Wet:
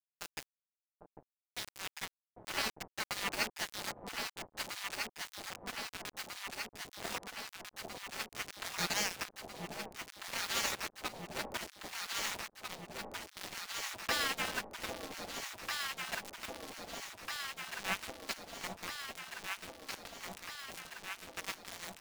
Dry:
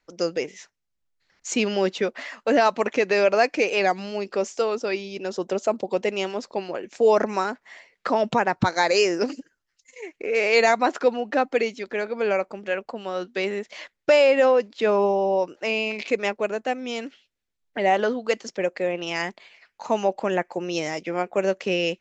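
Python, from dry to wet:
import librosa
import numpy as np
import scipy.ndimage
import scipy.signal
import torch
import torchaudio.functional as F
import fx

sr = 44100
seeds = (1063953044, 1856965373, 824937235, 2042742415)

y = fx.spec_quant(x, sr, step_db=15)
y = fx.small_body(y, sr, hz=(840.0, 1600.0), ring_ms=30, db=8)
y = fx.spec_gate(y, sr, threshold_db=-25, keep='weak')
y = fx.high_shelf(y, sr, hz=3000.0, db=-8.0)
y = np.where(np.abs(y) >= 10.0 ** (-37.0 / 20.0), y, 0.0)
y = fx.echo_alternate(y, sr, ms=798, hz=820.0, feedback_pct=85, wet_db=-3.0)
y = y * librosa.db_to_amplitude(4.5)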